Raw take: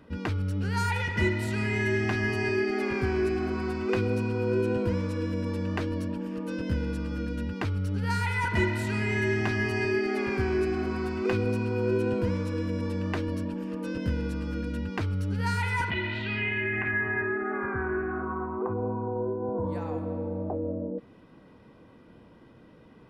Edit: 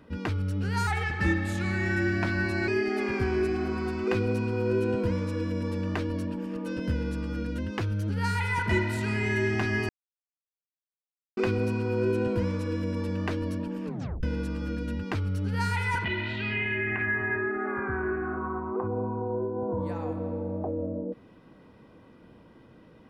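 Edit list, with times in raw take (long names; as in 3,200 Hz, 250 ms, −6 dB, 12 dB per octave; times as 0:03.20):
0:00.87–0:02.50: play speed 90%
0:07.40–0:07.95: play speed 108%
0:09.75–0:11.23: silence
0:13.71: tape stop 0.38 s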